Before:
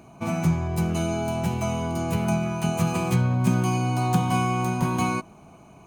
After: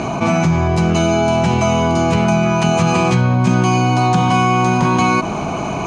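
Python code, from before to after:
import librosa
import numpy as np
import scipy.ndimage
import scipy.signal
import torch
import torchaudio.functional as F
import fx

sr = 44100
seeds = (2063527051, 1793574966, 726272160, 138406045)

y = scipy.signal.sosfilt(scipy.signal.butter(4, 6500.0, 'lowpass', fs=sr, output='sos'), x)
y = fx.low_shelf(y, sr, hz=210.0, db=-6.0)
y = fx.env_flatten(y, sr, amount_pct=70)
y = y * librosa.db_to_amplitude(8.0)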